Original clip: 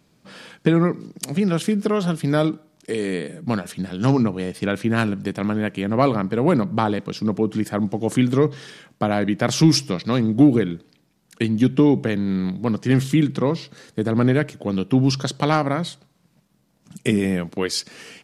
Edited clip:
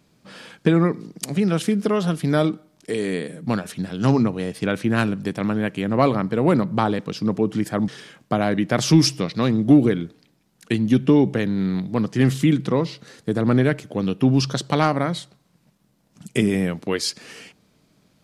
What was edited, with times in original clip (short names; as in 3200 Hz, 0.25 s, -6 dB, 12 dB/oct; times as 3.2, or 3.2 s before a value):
7.88–8.58 cut